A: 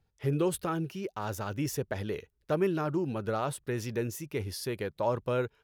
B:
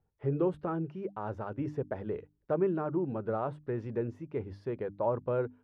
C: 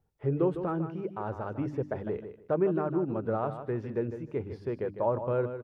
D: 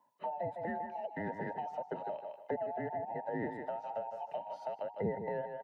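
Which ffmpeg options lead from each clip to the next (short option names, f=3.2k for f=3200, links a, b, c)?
-af "lowpass=1.1k,lowshelf=f=110:g=-4.5,bandreject=f=50:t=h:w=6,bandreject=f=100:t=h:w=6,bandreject=f=150:t=h:w=6,bandreject=f=200:t=h:w=6,bandreject=f=250:t=h:w=6,bandreject=f=300:t=h:w=6"
-af "aecho=1:1:153|306|459:0.316|0.0632|0.0126,volume=2dB"
-filter_complex "[0:a]afftfilt=real='real(if(between(b,1,1008),(2*floor((b-1)/48)+1)*48-b,b),0)':imag='imag(if(between(b,1,1008),(2*floor((b-1)/48)+1)*48-b,b),0)*if(between(b,1,1008),-1,1)':win_size=2048:overlap=0.75,acrossover=split=260[a][b];[b]acompressor=threshold=-39dB:ratio=6[c];[a][c]amix=inputs=2:normalize=0,highpass=f=130:w=0.5412,highpass=f=130:w=1.3066,volume=1.5dB"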